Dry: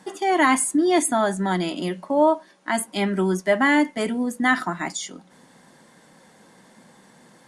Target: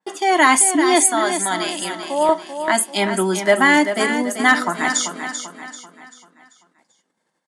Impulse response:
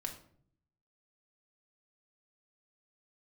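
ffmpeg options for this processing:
-af "asetnsamples=n=441:p=0,asendcmd='1.06 highpass f 1200;2.29 highpass f 390',highpass=f=470:p=1,agate=range=0.0316:threshold=0.00316:ratio=16:detection=peak,lowpass=11000,asoftclip=type=hard:threshold=0.355,aecho=1:1:389|778|1167|1556|1945:0.376|0.165|0.0728|0.032|0.0141,adynamicequalizer=threshold=0.00631:dfrequency=3900:dqfactor=0.7:tfrequency=3900:tqfactor=0.7:attack=5:release=100:ratio=0.375:range=2.5:mode=boostabove:tftype=highshelf,volume=2"

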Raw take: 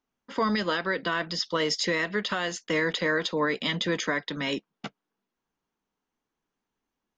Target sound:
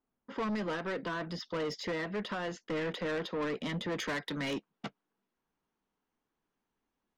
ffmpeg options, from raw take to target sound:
-af "asetnsamples=n=441:p=0,asendcmd='3.99 lowpass f 3300',lowpass=f=1000:p=1,asoftclip=type=tanh:threshold=0.0299"

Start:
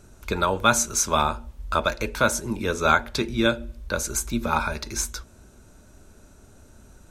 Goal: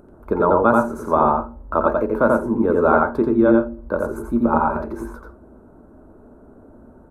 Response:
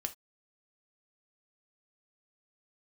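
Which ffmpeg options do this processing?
-filter_complex "[0:a]firequalizer=gain_entry='entry(110,0);entry(260,13);entry(370,12);entry(630,10);entry(1100,8);entry(2300,-17);entry(3300,-22);entry(6300,-28);entry(10000,-13)':delay=0.05:min_phase=1,acompressor=mode=upward:threshold=0.00631:ratio=2.5,asplit=2[s0][s1];[1:a]atrim=start_sample=2205,highshelf=f=5900:g=-8.5,adelay=86[s2];[s1][s2]afir=irnorm=-1:irlink=0,volume=0.944[s3];[s0][s3]amix=inputs=2:normalize=0,volume=0.631"

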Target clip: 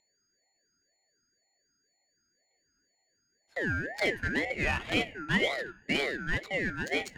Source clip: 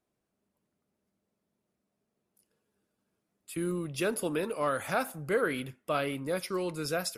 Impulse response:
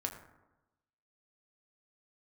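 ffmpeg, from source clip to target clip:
-filter_complex "[0:a]aeval=exprs='val(0)+0.00631*sin(2*PI*5300*n/s)':c=same,adynamicsmooth=sensitivity=6:basefreq=800,afreqshift=390,asplit=2[s0][s1];[1:a]atrim=start_sample=2205,adelay=20[s2];[s1][s2]afir=irnorm=-1:irlink=0,volume=0.188[s3];[s0][s3]amix=inputs=2:normalize=0,aeval=exprs='val(0)*sin(2*PI*1100*n/s+1100*0.25/2*sin(2*PI*2*n/s))':c=same,volume=1.5"

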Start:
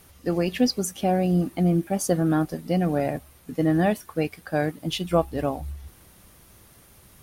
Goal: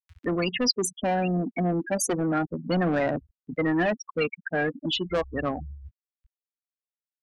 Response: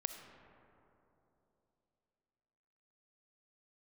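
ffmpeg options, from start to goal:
-filter_complex "[0:a]flanger=delay=0:depth=4.5:regen=45:speed=0.34:shape=sinusoidal,afftfilt=real='re*gte(hypot(re,im),0.0316)':imag='im*gte(hypot(re,im),0.0316)':win_size=1024:overlap=0.75,acrossover=split=190|1800[s0][s1][s2];[s0]acompressor=threshold=0.00501:ratio=6[s3];[s1]asoftclip=type=tanh:threshold=0.0355[s4];[s2]acompressor=mode=upward:threshold=0.0224:ratio=2.5[s5];[s3][s4][s5]amix=inputs=3:normalize=0,volume=2.24"

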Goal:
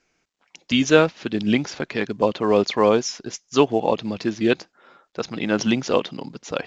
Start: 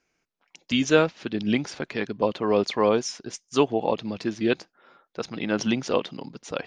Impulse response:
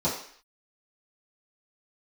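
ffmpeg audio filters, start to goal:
-af "volume=1.58" -ar 16000 -c:a pcm_mulaw

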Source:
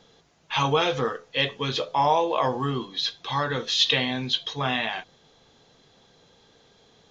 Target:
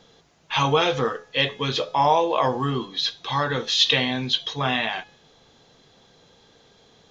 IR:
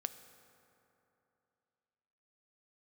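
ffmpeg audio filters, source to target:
-af "bandreject=f=421.9:t=h:w=4,bandreject=f=843.8:t=h:w=4,bandreject=f=1265.7:t=h:w=4,bandreject=f=1687.6:t=h:w=4,bandreject=f=2109.5:t=h:w=4,bandreject=f=2531.4:t=h:w=4,bandreject=f=2953.3:t=h:w=4,bandreject=f=3375.2:t=h:w=4,bandreject=f=3797.1:t=h:w=4,bandreject=f=4219:t=h:w=4,bandreject=f=4640.9:t=h:w=4,bandreject=f=5062.8:t=h:w=4,bandreject=f=5484.7:t=h:w=4,bandreject=f=5906.6:t=h:w=4,bandreject=f=6328.5:t=h:w=4,bandreject=f=6750.4:t=h:w=4,bandreject=f=7172.3:t=h:w=4,bandreject=f=7594.2:t=h:w=4,bandreject=f=8016.1:t=h:w=4,bandreject=f=8438:t=h:w=4,bandreject=f=8859.9:t=h:w=4,bandreject=f=9281.8:t=h:w=4,bandreject=f=9703.7:t=h:w=4,bandreject=f=10125.6:t=h:w=4,bandreject=f=10547.5:t=h:w=4,bandreject=f=10969.4:t=h:w=4,bandreject=f=11391.3:t=h:w=4,bandreject=f=11813.2:t=h:w=4,bandreject=f=12235.1:t=h:w=4,bandreject=f=12657:t=h:w=4,bandreject=f=13078.9:t=h:w=4,bandreject=f=13500.8:t=h:w=4,bandreject=f=13922.7:t=h:w=4,bandreject=f=14344.6:t=h:w=4,bandreject=f=14766.5:t=h:w=4,bandreject=f=15188.4:t=h:w=4,volume=1.33"

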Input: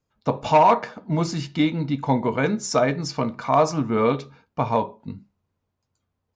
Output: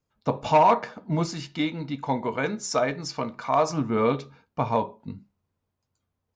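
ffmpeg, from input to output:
-filter_complex "[0:a]asettb=1/sr,asplit=3[s0][s1][s2];[s0]atrim=end=1.254[s3];[s1]atrim=start=1.25:end=3.7,asetpts=PTS-STARTPTS,afade=t=in:d=0.004:c=qsin,afade=t=out:st=2.446:d=0.004:c=qsin,equalizer=f=98:w=0.3:g=-6.5[s4];[s2]atrim=start=3.696[s5];[s3][s4]acrossfade=d=0.004:c1=hsin:c2=qsin[s6];[s6][s5]acrossfade=d=0.004:c1=qsin:c2=hsin,volume=0.75"

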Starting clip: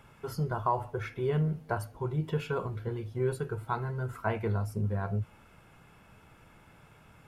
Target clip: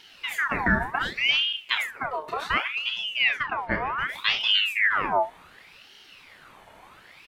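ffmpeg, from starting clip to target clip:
-filter_complex "[0:a]asettb=1/sr,asplit=3[s0][s1][s2];[s0]atrim=end=0.584[s3];[s1]atrim=start=0.58:end=1.23,asetpts=PTS-STARTPTS,afade=t=in:d=0.004:c=qsin,afade=t=out:st=0.646:d=0.004:c=qsin,aecho=1:1:7:0.69,atrim=end_sample=28665[s4];[s2]atrim=start=1.226[s5];[s3][s4]acrossfade=d=0.004:c1=hsin:c2=qsin[s6];[s6][s5]acrossfade=d=0.004:c1=qsin:c2=hsin,asplit=3[s7][s8][s9];[s7]afade=t=out:st=1.95:d=0.02[s10];[s8]acompressor=threshold=0.0251:ratio=6,afade=t=in:st=1.95:d=0.02,afade=t=out:st=2.36:d=0.02[s11];[s9]afade=t=in:st=2.36:d=0.02[s12];[s10][s11][s12]amix=inputs=3:normalize=0,asettb=1/sr,asplit=3[s13][s14][s15];[s13]atrim=end=3.244[s16];[s14]atrim=start=3.24:end=3.98,asetpts=PTS-STARTPTS,afade=t=in:d=0.004:c=qsin,afade=t=out:st=0.736:d=0.004:c=qsin,lowpass=3300[s17];[s15]atrim=start=3.976[s18];[s16][s17]acrossfade=d=0.004:c1=hsin:c2=qsin[s19];[s19][s18]acrossfade=d=0.004:c1=qsin:c2=hsin,aecho=1:1:29|65:0.473|0.211,aeval=exprs='val(0)*sin(2*PI*1900*n/s+1900*0.6/0.67*sin(2*PI*0.67*n/s))':c=same,volume=2.51"

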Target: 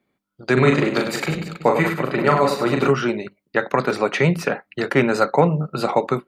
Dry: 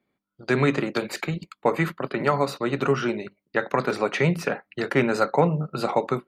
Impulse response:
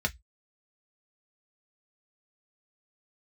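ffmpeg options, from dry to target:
-filter_complex "[0:a]asettb=1/sr,asplit=3[s0][s1][s2];[s0]atrim=end=0.534[s3];[s1]atrim=start=0.53:end=2.9,asetpts=PTS-STARTPTS,afade=t=in:d=0.004:c=qsin,afade=t=out:st=2.366:d=0.004:c=qsin,aecho=1:1:40|100|190|325|527.5:0.631|0.398|0.251|0.158|0.1,atrim=end_sample=104517[s4];[s2]atrim=start=2.896[s5];[s3][s4]acrossfade=d=0.004:c1=hsin:c2=qsin[s6];[s6][s5]acrossfade=d=0.004:c1=qsin:c2=hsin,volume=1.58"

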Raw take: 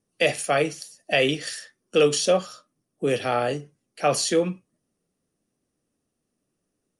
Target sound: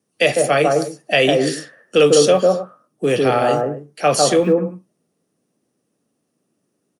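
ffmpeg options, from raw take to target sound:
-filter_complex "[0:a]acrossover=split=110|1400|3300[s0][s1][s2][s3];[s0]acrusher=bits=7:mix=0:aa=0.000001[s4];[s1]aecho=1:1:151.6|256.6:1|0.282[s5];[s4][s5][s2][s3]amix=inputs=4:normalize=0,volume=1.88"

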